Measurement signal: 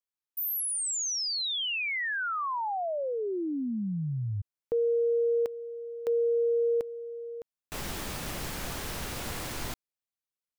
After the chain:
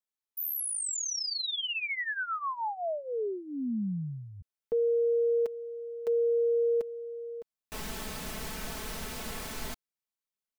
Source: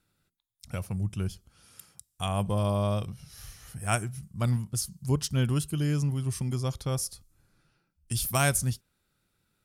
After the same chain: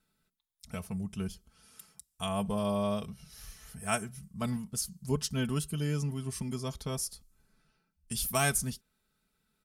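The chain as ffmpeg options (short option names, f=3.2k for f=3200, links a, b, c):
-af "aecho=1:1:4.6:0.7,volume=-4dB"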